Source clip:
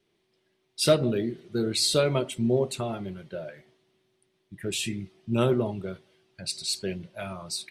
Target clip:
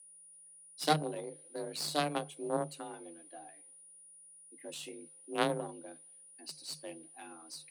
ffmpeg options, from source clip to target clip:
-af "aeval=exprs='val(0)+0.0112*sin(2*PI*9500*n/s)':c=same,aeval=exprs='0.376*(cos(1*acos(clip(val(0)/0.376,-1,1)))-cos(1*PI/2))+0.168*(cos(2*acos(clip(val(0)/0.376,-1,1)))-cos(2*PI/2))+0.0841*(cos(3*acos(clip(val(0)/0.376,-1,1)))-cos(3*PI/2))+0.0075*(cos(4*acos(clip(val(0)/0.376,-1,1)))-cos(4*PI/2))+0.00473*(cos(8*acos(clip(val(0)/0.376,-1,1)))-cos(8*PI/2))':c=same,afreqshift=150,volume=-5.5dB"

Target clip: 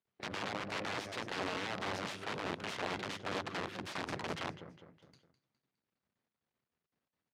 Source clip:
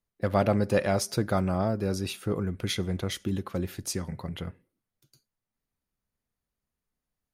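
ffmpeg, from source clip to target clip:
-filter_complex "[0:a]bandreject=f=50:t=h:w=6,bandreject=f=100:t=h:w=6,bandreject=f=150:t=h:w=6,bandreject=f=200:t=h:w=6,bandreject=f=250:t=h:w=6,bandreject=f=300:t=h:w=6,bandreject=f=350:t=h:w=6,acompressor=threshold=-32dB:ratio=16,aeval=exprs='max(val(0),0)':c=same,asplit=2[a][b];[b]aecho=0:1:206|412|618|824:0.2|0.0898|0.0404|0.0182[c];[a][c]amix=inputs=2:normalize=0,aeval=exprs='(mod(53.1*val(0)+1,2)-1)/53.1':c=same,asplit=2[d][e];[e]asetrate=37084,aresample=44100,atempo=1.18921,volume=-15dB[f];[d][f]amix=inputs=2:normalize=0,highpass=130,lowpass=3.8k,volume=6dB"

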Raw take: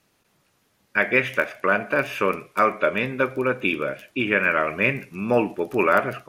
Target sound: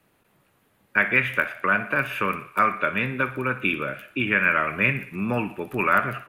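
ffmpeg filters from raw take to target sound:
-filter_complex "[0:a]equalizer=f=5.6k:t=o:w=1.1:g=-13.5,acrossover=split=230|1000|6400[a][b][c][d];[b]acompressor=threshold=-36dB:ratio=6[e];[c]aecho=1:1:60|120|180|240|300|360:0.211|0.118|0.0663|0.0371|0.0208|0.0116[f];[a][e][f][d]amix=inputs=4:normalize=0,volume=3dB"

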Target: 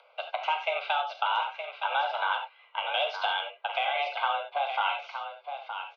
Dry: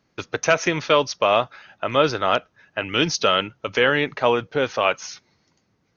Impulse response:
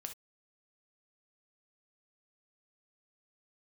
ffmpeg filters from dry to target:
-filter_complex "[0:a]highpass=f=260:t=q:w=0.5412,highpass=f=260:t=q:w=1.307,lowpass=f=3.3k:t=q:w=0.5176,lowpass=f=3.3k:t=q:w=0.7071,lowpass=f=3.3k:t=q:w=1.932,afreqshift=280,acompressor=threshold=-22dB:ratio=6[a];[1:a]atrim=start_sample=2205,asetrate=34839,aresample=44100[b];[a][b]afir=irnorm=-1:irlink=0,acompressor=mode=upward:threshold=-48dB:ratio=2.5,asuperstop=centerf=1800:order=8:qfactor=4.1,aecho=1:1:918:0.376"

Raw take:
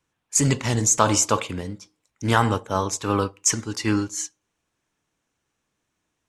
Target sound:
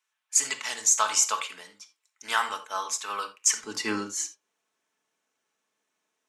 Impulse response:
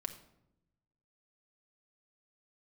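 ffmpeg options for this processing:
-filter_complex "[0:a]asetnsamples=n=441:p=0,asendcmd='3.64 highpass f 380',highpass=1.2k[a];[1:a]atrim=start_sample=2205,atrim=end_sample=3969[b];[a][b]afir=irnorm=-1:irlink=0"

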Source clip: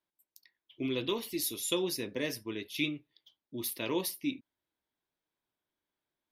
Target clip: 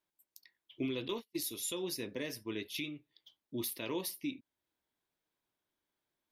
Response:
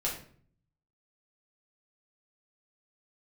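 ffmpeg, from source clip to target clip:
-filter_complex "[0:a]asettb=1/sr,asplit=3[a][b][c];[a]atrim=end=1.084[d];[b]atrim=start=1.08:end=1.51,asetpts=PTS-STARTPTS,afade=t=in:d=0.004:c=qsin,afade=t=out:st=0.426:d=0.004:c=qsin,agate=range=-39dB:threshold=-34dB:ratio=16:detection=peak[e];[c]atrim=start=1.506[f];[d][e]acrossfade=d=0.004:c1=hsin:c2=qsin[g];[g][f]acrossfade=d=0.004:c1=qsin:c2=hsin,alimiter=level_in=4dB:limit=-24dB:level=0:latency=1:release=436,volume=-4dB,volume=1dB"

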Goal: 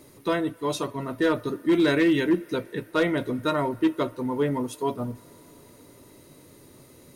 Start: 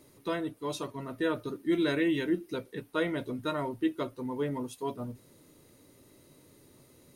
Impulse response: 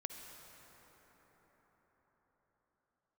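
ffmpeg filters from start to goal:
-filter_complex "[0:a]asplit=2[a][b];[b]aemphasis=mode=production:type=riaa[c];[1:a]atrim=start_sample=2205,lowpass=f=2.8k:w=0.5412,lowpass=f=2.8k:w=1.3066[d];[c][d]afir=irnorm=-1:irlink=0,volume=-15.5dB[e];[a][e]amix=inputs=2:normalize=0,volume=22dB,asoftclip=hard,volume=-22dB,volume=7dB"

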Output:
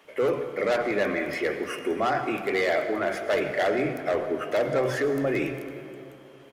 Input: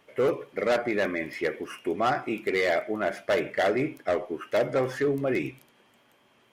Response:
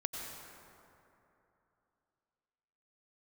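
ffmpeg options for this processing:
-filter_complex "[0:a]alimiter=limit=-23.5dB:level=0:latency=1:release=11,acrossover=split=200[a][b];[a]adelay=40[c];[c][b]amix=inputs=2:normalize=0,asplit=2[d][e];[1:a]atrim=start_sample=2205[f];[e][f]afir=irnorm=-1:irlink=0,volume=-3dB[g];[d][g]amix=inputs=2:normalize=0,volume=1dB"

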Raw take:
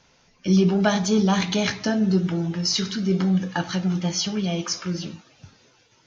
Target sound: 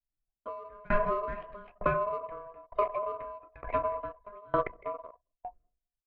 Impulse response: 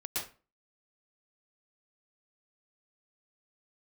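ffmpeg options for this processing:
-filter_complex "[0:a]lowpass=f=1.6k:w=0.5412,lowpass=f=1.6k:w=1.3066,equalizer=f=97:t=o:w=0.36:g=11,agate=range=-33dB:threshold=-52dB:ratio=3:detection=peak,aeval=exprs='val(0)*sin(2*PI*820*n/s)':c=same,asplit=2[a][b];[b]adelay=208,lowpass=f=1k:p=1,volume=-15dB,asplit=2[c][d];[d]adelay=208,lowpass=f=1k:p=1,volume=0.41,asplit=2[e][f];[f]adelay=208,lowpass=f=1k:p=1,volume=0.41,asplit=2[g][h];[h]adelay=208,lowpass=f=1k:p=1,volume=0.41[i];[a][c][e][g][i]amix=inputs=5:normalize=0,asplit=2[j][k];[k]asoftclip=type=tanh:threshold=-18.5dB,volume=-7.5dB[l];[j][l]amix=inputs=2:normalize=0,anlmdn=25.1,acompressor=threshold=-24dB:ratio=12,bandreject=f=920:w=8.5,dynaudnorm=f=100:g=3:m=13.5dB,lowshelf=f=66:g=11.5,aeval=exprs='val(0)*pow(10,-31*if(lt(mod(1.1*n/s,1),2*abs(1.1)/1000),1-mod(1.1*n/s,1)/(2*abs(1.1)/1000),(mod(1.1*n/s,1)-2*abs(1.1)/1000)/(1-2*abs(1.1)/1000))/20)':c=same,volume=-7.5dB"

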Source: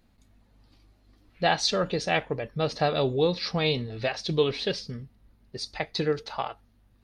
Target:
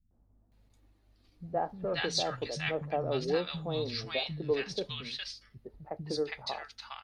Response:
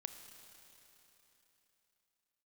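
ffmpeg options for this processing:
-filter_complex "[0:a]acrossover=split=190|1100[a][b][c];[b]adelay=110[d];[c]adelay=520[e];[a][d][e]amix=inputs=3:normalize=0,volume=-5.5dB"

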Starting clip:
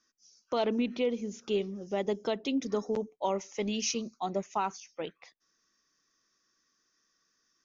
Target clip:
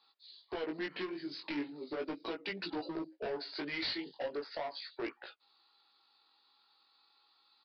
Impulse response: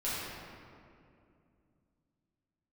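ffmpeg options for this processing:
-af "highpass=f=480:w=0.5412,highpass=f=480:w=1.3066,acompressor=threshold=-35dB:ratio=16,asetrate=32097,aresample=44100,atempo=1.37395,aresample=11025,asoftclip=type=hard:threshold=-39.5dB,aresample=44100,flanger=delay=17:depth=4.5:speed=0.38,volume=8.5dB"

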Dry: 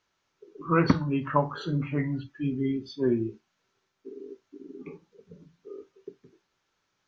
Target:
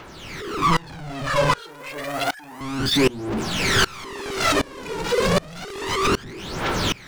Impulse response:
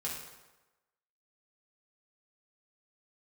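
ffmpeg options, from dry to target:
-filter_complex "[0:a]aeval=exprs='val(0)+0.5*0.0891*sgn(val(0))':c=same,acrossover=split=4500[a][b];[b]acompressor=threshold=-45dB:ratio=4:attack=1:release=60[c];[a][c]amix=inputs=2:normalize=0,asettb=1/sr,asplit=3[d][e][f];[d]atrim=end=1.604[g];[e]atrim=start=1.6:end=2.61,asetpts=PTS-STARTPTS,afade=t=in:d=0.004:c=qsin,afade=t=out:st=1.006:d=0.004:c=qsin,highpass=530[h];[f]atrim=start=2.606[i];[g][h]acrossfade=d=0.004:c1=hsin:c2=qsin[j];[j][i]acrossfade=d=0.004:c1=qsin:c2=hsin,dynaudnorm=f=230:g=11:m=10dB,asoftclip=type=tanh:threshold=-23.5dB,aphaser=in_gain=1:out_gain=1:delay=2.2:decay=0.67:speed=0.3:type=triangular,aeval=exprs='val(0)*pow(10,-26*if(lt(mod(-1.3*n/s,1),2*abs(-1.3)/1000),1-mod(-1.3*n/s,1)/(2*abs(-1.3)/1000),(mod(-1.3*n/s,1)-2*abs(-1.3)/1000)/(1-2*abs(-1.3)/1000))/20)':c=same,volume=8dB"

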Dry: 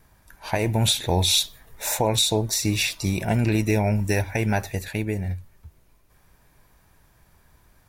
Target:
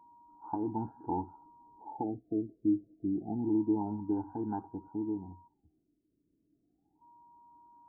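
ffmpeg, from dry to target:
-filter_complex "[0:a]asplit=3[a][b][c];[a]bandpass=f=300:t=q:w=8,volume=0dB[d];[b]bandpass=f=870:t=q:w=8,volume=-6dB[e];[c]bandpass=f=2.24k:t=q:w=8,volume=-9dB[f];[d][e][f]amix=inputs=3:normalize=0,aeval=exprs='val(0)+0.00112*sin(2*PI*950*n/s)':c=same,afftfilt=real='re*lt(b*sr/1024,650*pow(1700/650,0.5+0.5*sin(2*PI*0.28*pts/sr)))':imag='im*lt(b*sr/1024,650*pow(1700/650,0.5+0.5*sin(2*PI*0.28*pts/sr)))':win_size=1024:overlap=0.75,volume=2.5dB"

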